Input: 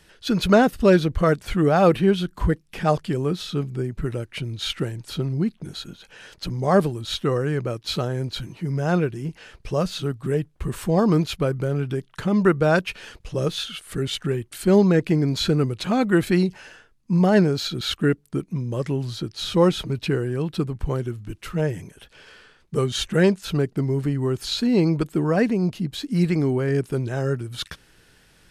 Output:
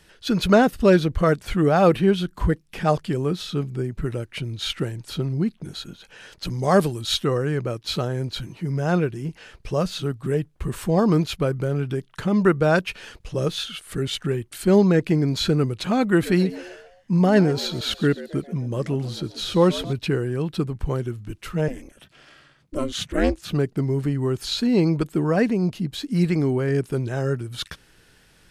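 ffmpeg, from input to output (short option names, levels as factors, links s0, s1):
-filter_complex "[0:a]asettb=1/sr,asplit=3[s0][s1][s2];[s0]atrim=end=6.454[s3];[s1]atrim=start=6.45:end=7.25,asetpts=PTS-STARTPTS,afade=t=in:d=0.004:c=qsin,afade=t=out:st=0.796:d=0.004:c=qsin,highshelf=f=2700:g=7.5[s4];[s2]atrim=start=7.246[s5];[s3][s4]acrossfade=d=0.004:c1=hsin:c2=qsin[s6];[s6][s5]acrossfade=d=0.004:c1=qsin:c2=hsin,asettb=1/sr,asplit=3[s7][s8][s9];[s7]atrim=end=16.094[s10];[s8]atrim=start=16.09:end=19.93,asetpts=PTS-STARTPTS,afade=t=in:d=0.004:c=qsin,afade=t=out:st=3.836:d=0.004:c=qsin,asplit=5[s11][s12][s13][s14][s15];[s12]adelay=134,afreqshift=89,volume=0.15[s16];[s13]adelay=268,afreqshift=178,volume=0.07[s17];[s14]adelay=402,afreqshift=267,volume=0.0331[s18];[s15]adelay=536,afreqshift=356,volume=0.0155[s19];[s11][s16][s17][s18][s19]amix=inputs=5:normalize=0,atrim=end_sample=169344[s20];[s9]atrim=start=19.926[s21];[s10][s20]acrossfade=d=0.004:c1=hsin:c2=qsin[s22];[s22][s21]acrossfade=d=0.004:c1=qsin:c2=hsin,asettb=1/sr,asplit=3[s23][s24][s25];[s23]atrim=end=21.684[s26];[s24]atrim=start=21.68:end=23.53,asetpts=PTS-STARTPTS,afade=t=in:d=0.004:c=qsin,afade=t=out:st=1.846:d=0.004:c=qsin,aeval=exprs='val(0)*sin(2*PI*140*n/s)':c=same[s27];[s25]atrim=start=23.526[s28];[s26][s27]acrossfade=d=0.004:c1=hsin:c2=qsin[s29];[s29][s28]acrossfade=d=0.004:c1=qsin:c2=hsin"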